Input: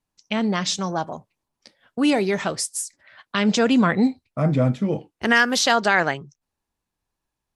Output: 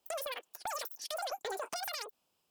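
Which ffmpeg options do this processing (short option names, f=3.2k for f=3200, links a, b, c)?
-filter_complex "[0:a]highpass=f=220:p=1,equalizer=f=650:w=2:g=-10,acrossover=split=2500|7100[a][b][c];[a]acompressor=threshold=-34dB:ratio=4[d];[b]acompressor=threshold=-42dB:ratio=4[e];[c]acompressor=threshold=-40dB:ratio=4[f];[d][e][f]amix=inputs=3:normalize=0,acrossover=split=550|820[g][h][i];[i]alimiter=level_in=4dB:limit=-24dB:level=0:latency=1:release=330,volume=-4dB[j];[g][h][j]amix=inputs=3:normalize=0,acompressor=threshold=-44dB:ratio=6,asetrate=133182,aresample=44100,asoftclip=type=tanh:threshold=-34dB,volume=8.5dB"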